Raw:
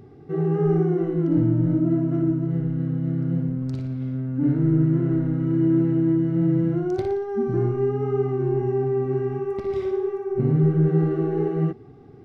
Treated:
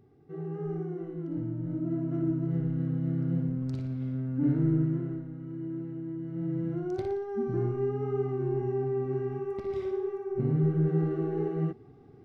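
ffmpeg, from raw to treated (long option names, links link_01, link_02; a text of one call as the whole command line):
ffmpeg -i in.wav -af "volume=5dB,afade=type=in:start_time=1.61:duration=0.94:silence=0.354813,afade=type=out:start_time=4.61:duration=0.64:silence=0.251189,afade=type=in:start_time=6.13:duration=0.93:silence=0.316228" out.wav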